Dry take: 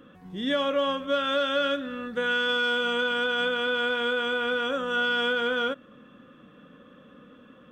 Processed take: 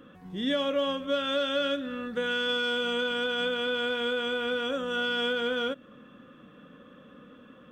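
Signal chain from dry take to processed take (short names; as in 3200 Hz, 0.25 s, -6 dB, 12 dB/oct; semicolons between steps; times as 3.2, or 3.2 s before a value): dynamic EQ 1200 Hz, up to -6 dB, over -38 dBFS, Q 0.84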